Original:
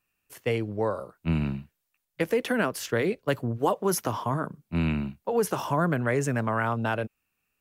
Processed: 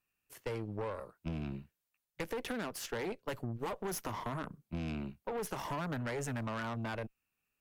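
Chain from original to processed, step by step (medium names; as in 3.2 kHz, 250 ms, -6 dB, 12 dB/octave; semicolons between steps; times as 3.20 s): valve stage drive 27 dB, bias 0.8; compression, threshold -32 dBFS, peak gain reduction 5.5 dB; trim -2 dB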